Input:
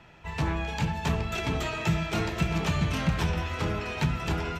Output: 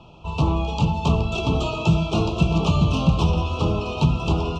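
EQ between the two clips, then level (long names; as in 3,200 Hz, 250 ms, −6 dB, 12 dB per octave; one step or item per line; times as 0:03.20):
elliptic band-stop filter 1,200–2,700 Hz, stop band 70 dB
high-frequency loss of the air 100 metres
+8.5 dB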